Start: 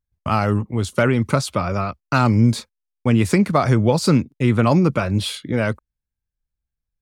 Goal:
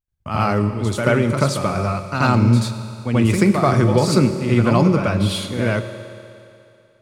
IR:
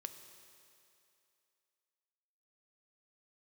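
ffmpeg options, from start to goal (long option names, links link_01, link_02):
-filter_complex "[0:a]asplit=2[link_01][link_02];[1:a]atrim=start_sample=2205,adelay=83[link_03];[link_02][link_03]afir=irnorm=-1:irlink=0,volume=10.5dB[link_04];[link_01][link_04]amix=inputs=2:normalize=0,volume=-6.5dB"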